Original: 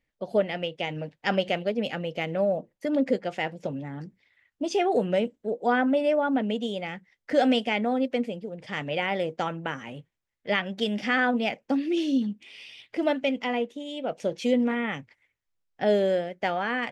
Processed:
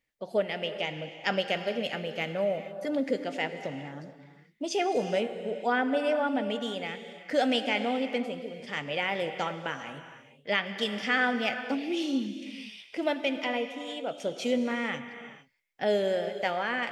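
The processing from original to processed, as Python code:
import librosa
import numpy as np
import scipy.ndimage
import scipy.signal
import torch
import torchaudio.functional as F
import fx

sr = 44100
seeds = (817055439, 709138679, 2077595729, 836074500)

y = fx.tilt_eq(x, sr, slope=1.5)
y = fx.rev_gated(y, sr, seeds[0], gate_ms=490, shape='flat', drr_db=8.5)
y = y * 10.0 ** (-2.5 / 20.0)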